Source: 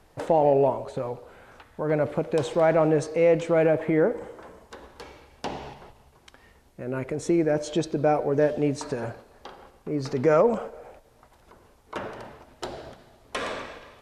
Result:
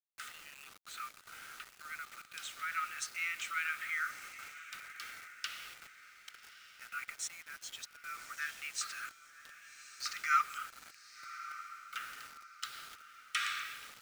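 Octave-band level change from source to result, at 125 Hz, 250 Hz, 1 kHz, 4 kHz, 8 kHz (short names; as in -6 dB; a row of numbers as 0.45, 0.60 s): under -40 dB, under -40 dB, -9.5 dB, -0.5 dB, +0.5 dB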